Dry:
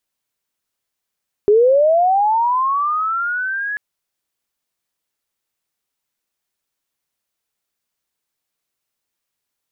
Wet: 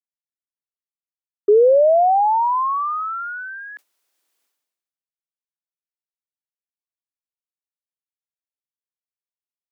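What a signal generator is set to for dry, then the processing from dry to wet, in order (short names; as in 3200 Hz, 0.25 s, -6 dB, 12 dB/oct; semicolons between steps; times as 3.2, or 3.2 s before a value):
chirp linear 400 Hz -> 1700 Hz -8 dBFS -> -20.5 dBFS 2.29 s
expander -15 dBFS; HPF 260 Hz 24 dB/oct; sustainer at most 52 dB/s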